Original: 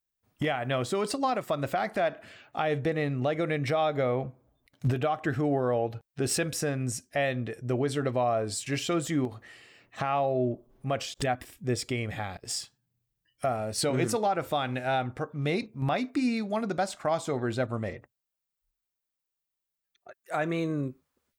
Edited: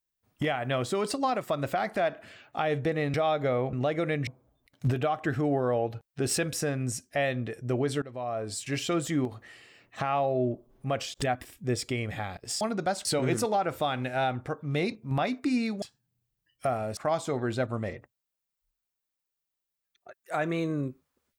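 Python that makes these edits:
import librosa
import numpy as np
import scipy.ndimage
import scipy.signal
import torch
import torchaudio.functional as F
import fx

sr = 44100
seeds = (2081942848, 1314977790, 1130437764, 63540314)

y = fx.edit(x, sr, fx.move(start_s=3.14, length_s=0.54, to_s=4.27),
    fx.fade_in_from(start_s=8.02, length_s=0.98, curve='qsin', floor_db=-20.0),
    fx.swap(start_s=12.61, length_s=1.15, other_s=16.53, other_length_s=0.44), tone=tone)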